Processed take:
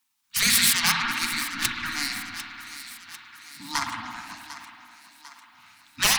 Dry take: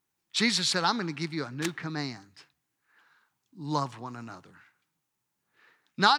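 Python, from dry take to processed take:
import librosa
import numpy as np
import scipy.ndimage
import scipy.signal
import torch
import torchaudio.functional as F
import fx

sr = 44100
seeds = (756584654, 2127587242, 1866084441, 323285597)

p1 = fx.self_delay(x, sr, depth_ms=0.27)
p2 = scipy.signal.sosfilt(scipy.signal.cheby1(2, 1.0, [160.0, 1300.0], 'bandstop', fs=sr, output='sos'), p1)
p3 = fx.low_shelf(p2, sr, hz=66.0, db=8.0)
p4 = p3 + 0.32 * np.pad(p3, (int(4.3 * sr / 1000.0), 0))[:len(p3)]
p5 = fx.dynamic_eq(p4, sr, hz=640.0, q=0.81, threshold_db=-46.0, ratio=4.0, max_db=-3)
p6 = fx.level_steps(p5, sr, step_db=11)
p7 = p5 + F.gain(torch.from_numpy(p6), -2.0).numpy()
p8 = fx.rev_spring(p7, sr, rt60_s=2.2, pass_ms=(54,), chirp_ms=75, drr_db=2.5)
p9 = np.clip(p8, -10.0 ** (-18.0 / 20.0), 10.0 ** (-18.0 / 20.0))
p10 = fx.spec_gate(p9, sr, threshold_db=-10, keep='weak')
p11 = p10 + fx.echo_thinned(p10, sr, ms=748, feedback_pct=57, hz=300.0, wet_db=-14.0, dry=0)
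y = F.gain(torch.from_numpy(p11), 8.0).numpy()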